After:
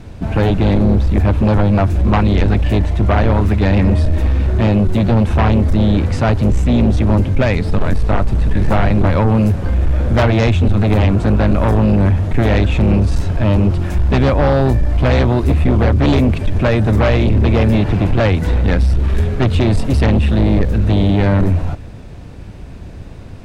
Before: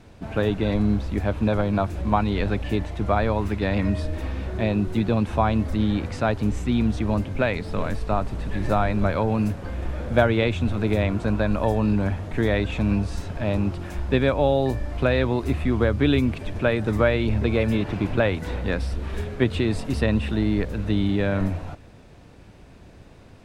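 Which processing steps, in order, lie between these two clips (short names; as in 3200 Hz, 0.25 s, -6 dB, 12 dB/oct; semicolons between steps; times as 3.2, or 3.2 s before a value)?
low shelf 190 Hz +9.5 dB; in parallel at -10.5 dB: sine folder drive 13 dB, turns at -2 dBFS; on the sum: gain -1 dB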